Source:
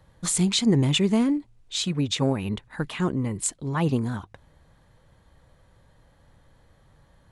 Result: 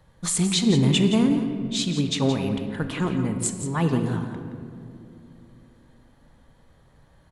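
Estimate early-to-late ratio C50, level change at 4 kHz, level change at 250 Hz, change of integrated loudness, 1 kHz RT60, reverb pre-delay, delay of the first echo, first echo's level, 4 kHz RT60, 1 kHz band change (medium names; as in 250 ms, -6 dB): 6.0 dB, +1.0 dB, +2.5 dB, +1.5 dB, 2.3 s, 4 ms, 171 ms, -10.5 dB, 1.3 s, +1.5 dB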